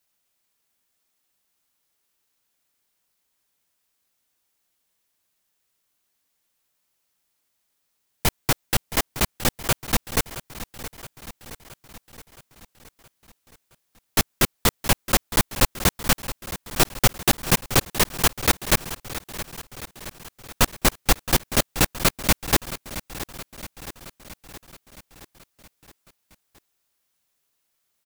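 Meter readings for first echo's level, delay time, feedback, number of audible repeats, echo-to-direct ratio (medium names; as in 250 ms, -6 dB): -14.0 dB, 670 ms, 59%, 5, -12.0 dB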